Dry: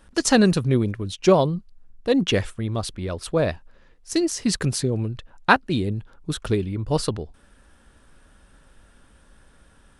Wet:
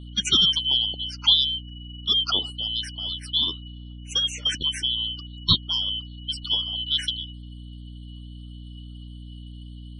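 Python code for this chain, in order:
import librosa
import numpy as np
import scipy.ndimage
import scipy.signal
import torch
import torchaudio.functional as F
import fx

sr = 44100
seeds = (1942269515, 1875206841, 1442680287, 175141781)

y = fx.band_shuffle(x, sr, order='2413')
y = fx.spec_topn(y, sr, count=64)
y = fx.add_hum(y, sr, base_hz=60, snr_db=12)
y = y * librosa.db_to_amplitude(-3.0)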